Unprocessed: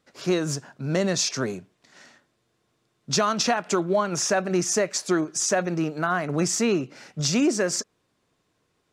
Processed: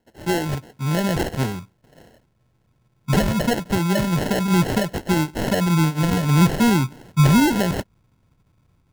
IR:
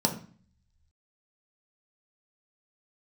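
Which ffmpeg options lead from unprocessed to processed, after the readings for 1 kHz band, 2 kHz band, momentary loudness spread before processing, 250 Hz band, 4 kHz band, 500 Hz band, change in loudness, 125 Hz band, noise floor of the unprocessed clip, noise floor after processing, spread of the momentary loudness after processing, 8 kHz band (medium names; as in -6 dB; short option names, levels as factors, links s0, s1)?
+3.0 dB, +2.5 dB, 8 LU, +6.5 dB, 0.0 dB, -0.5 dB, +4.0 dB, +12.0 dB, -72 dBFS, -65 dBFS, 9 LU, -6.0 dB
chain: -af "asubboost=boost=10.5:cutoff=140,acrusher=samples=37:mix=1:aa=0.000001,volume=1.26"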